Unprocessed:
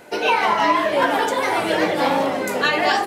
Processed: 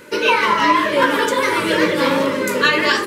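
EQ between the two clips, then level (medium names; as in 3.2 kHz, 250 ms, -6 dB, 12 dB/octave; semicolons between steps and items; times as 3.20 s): Butterworth band-stop 740 Hz, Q 2.1; +4.5 dB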